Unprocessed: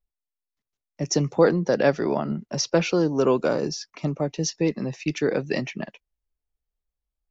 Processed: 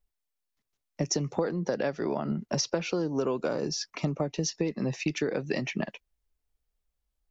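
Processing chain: compressor 12:1, threshold -29 dBFS, peak gain reduction 17.5 dB; gain +4 dB

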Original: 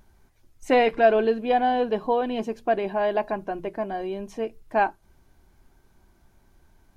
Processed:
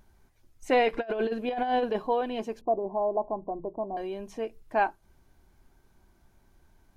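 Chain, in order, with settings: 2.61–3.97 steep low-pass 1100 Hz 72 dB/oct; dynamic EQ 150 Hz, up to -5 dB, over -37 dBFS, Q 0.75; 0.93–2.02 negative-ratio compressor -24 dBFS, ratio -0.5; gain -3 dB

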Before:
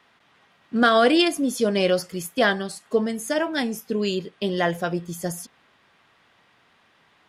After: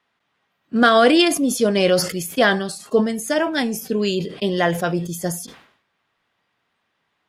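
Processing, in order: spectral noise reduction 15 dB; sustainer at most 93 dB/s; gain +3.5 dB

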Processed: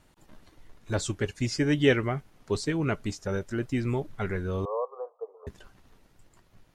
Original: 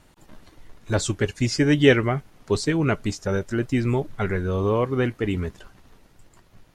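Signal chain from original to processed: 4.65–5.47 Chebyshev band-pass 450–1200 Hz, order 5; gain -6 dB

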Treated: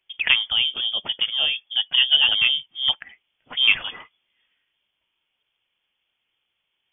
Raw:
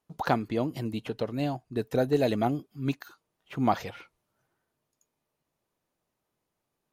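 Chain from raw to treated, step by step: inverted band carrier 3400 Hz; gain +7 dB

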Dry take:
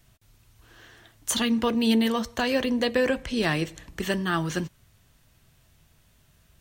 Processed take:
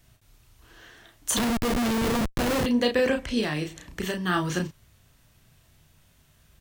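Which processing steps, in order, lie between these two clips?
3.4–4.25 compressor, threshold -26 dBFS, peak gain reduction 6.5 dB; doubler 33 ms -5 dB; 1.37–2.66 Schmitt trigger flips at -25 dBFS

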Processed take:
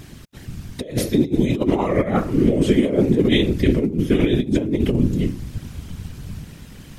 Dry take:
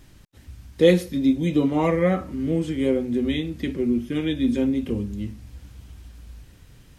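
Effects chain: 3.47–5.09 low shelf 140 Hz +8 dB; negative-ratio compressor -24 dBFS, ratio -0.5; whisperiser; gain +7 dB

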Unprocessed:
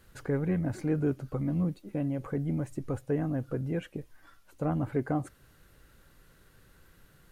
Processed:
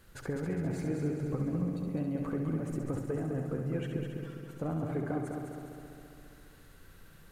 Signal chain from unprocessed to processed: compressor, threshold -32 dBFS, peak gain reduction 8.5 dB; on a send: multi-head echo 68 ms, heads first and third, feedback 71%, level -6.5 dB

